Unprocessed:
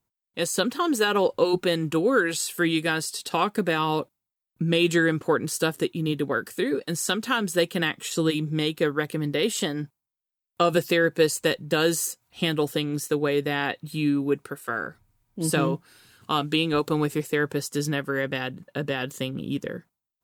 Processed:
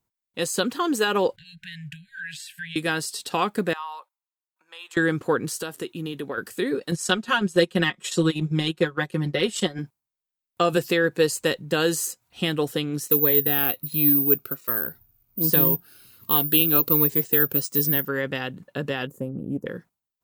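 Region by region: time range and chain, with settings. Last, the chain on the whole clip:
0:01.36–0:02.76: bass and treble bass −5 dB, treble −14 dB + downward compressor 3 to 1, threshold −27 dBFS + linear-phase brick-wall band-stop 180–1,500 Hz
0:03.73–0:04.97: downward compressor 2 to 1, threshold −27 dBFS + four-pole ladder high-pass 830 Hz, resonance 55%
0:05.51–0:06.38: high-pass filter 95 Hz + parametric band 140 Hz −5 dB 2.4 octaves + downward compressor 5 to 1, threshold −26 dBFS
0:06.91–0:09.79: low-pass filter 9,700 Hz + comb filter 5.5 ms, depth 85% + transient designer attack 0 dB, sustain −11 dB
0:13.08–0:18.08: bad sample-rate conversion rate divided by 3×, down filtered, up zero stuff + phaser whose notches keep moving one way falling 1.3 Hz
0:19.07–0:19.66: drawn EQ curve 540 Hz 0 dB, 3,400 Hz −30 dB, 14,000 Hz −4 dB + highs frequency-modulated by the lows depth 0.11 ms
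whole clip: no processing

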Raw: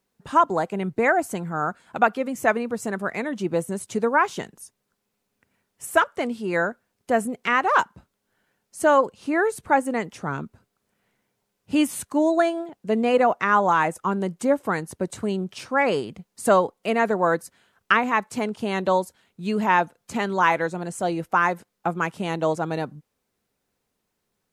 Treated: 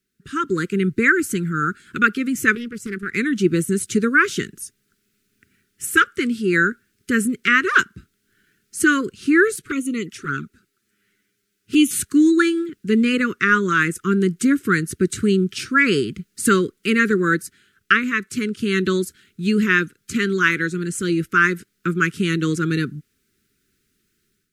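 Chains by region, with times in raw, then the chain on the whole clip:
0:02.55–0:03.13: noise gate −31 dBFS, range −10 dB + downward compressor 4 to 1, threshold −29 dBFS + highs frequency-modulated by the lows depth 0.31 ms
0:09.56–0:11.91: low-shelf EQ 170 Hz −12 dB + flanger swept by the level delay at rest 10.3 ms, full sweep at −23 dBFS
whole clip: elliptic band-stop filter 390–1,400 Hz, stop band 60 dB; automatic gain control gain up to 10 dB

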